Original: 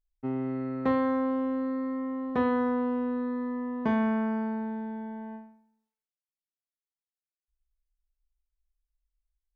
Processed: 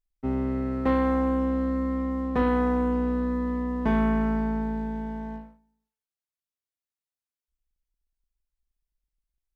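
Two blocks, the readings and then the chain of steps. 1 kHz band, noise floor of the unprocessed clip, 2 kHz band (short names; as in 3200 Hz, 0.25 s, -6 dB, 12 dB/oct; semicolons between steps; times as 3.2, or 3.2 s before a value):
+2.5 dB, under -85 dBFS, +2.5 dB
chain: octaver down 2 oct, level -4 dB; sample leveller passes 1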